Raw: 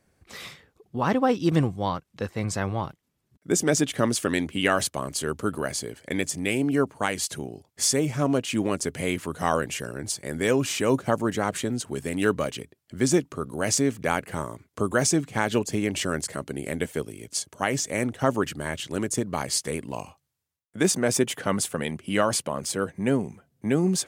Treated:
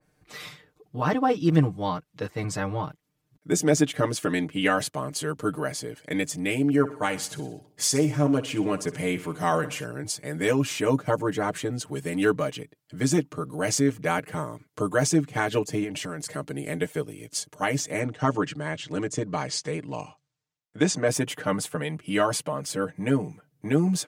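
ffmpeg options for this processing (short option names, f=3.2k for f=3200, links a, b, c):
-filter_complex "[0:a]asettb=1/sr,asplit=3[a][b][c];[a]atrim=end=6.684[d];[b]atrim=start=6.68:end=9.84,asetpts=PTS-STARTPTS,afade=t=in:d=0.004:c=qsin,afade=t=out:st=3.156:d=0.004:c=qsin,aecho=1:1:62|124|186|248|310:0.168|0.0856|0.0437|0.0223|0.0114,atrim=end_sample=139356[e];[c]atrim=start=9.836[f];[d][e]acrossfade=d=0.004:c1=hsin:c2=qsin[g];[g][f]acrossfade=d=0.004:c1=qsin:c2=hsin,asettb=1/sr,asplit=3[h][i][j];[h]atrim=end=15.834[k];[i]atrim=start=15.83:end=16.26,asetpts=PTS-STARTPTS,afade=t=in:d=0.004:c=qsin,afade=t=out:st=0.426:d=0.004:c=qsin,acompressor=threshold=-27dB:ratio=6:attack=3.2:release=140:knee=1:detection=peak[l];[j]atrim=start=16.256[m];[k][l]acrossfade=d=0.004:c1=hsin:c2=qsin[n];[n][m]acrossfade=d=0.004:c1=qsin:c2=hsin,asettb=1/sr,asplit=3[o][p][q];[o]atrim=end=17.994[r];[p]atrim=start=17.99:end=21.08,asetpts=PTS-STARTPTS,afade=t=in:d=0.004:c=qsin,afade=t=out:st=3.086:d=0.004:c=qsin,lowpass=f=7.7k:w=0.5412,lowpass=f=7.7k:w=1.3066[s];[q]atrim=start=21.076[t];[r][s]acrossfade=d=0.004:c1=hsin:c2=qsin[u];[u][t]acrossfade=d=0.004:c1=qsin:c2=hsin,equalizer=f=8.5k:w=1.5:g=-2,aecho=1:1:6.6:0.97,adynamicequalizer=threshold=0.0141:dfrequency=2600:dqfactor=0.7:tfrequency=2600:tqfactor=0.7:attack=5:release=100:ratio=0.375:range=2.5:mode=cutabove:tftype=highshelf,volume=-3dB"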